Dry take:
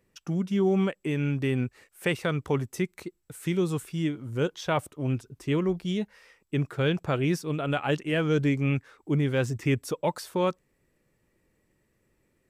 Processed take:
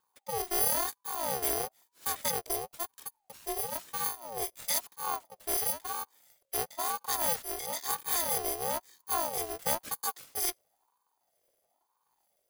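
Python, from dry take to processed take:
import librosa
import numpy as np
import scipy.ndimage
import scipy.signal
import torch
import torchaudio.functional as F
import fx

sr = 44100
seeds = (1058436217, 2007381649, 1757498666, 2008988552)

y = fx.bit_reversed(x, sr, seeds[0], block=128)
y = fx.rotary(y, sr, hz=1.2)
y = fx.ring_lfo(y, sr, carrier_hz=770.0, swing_pct=30, hz=1.0)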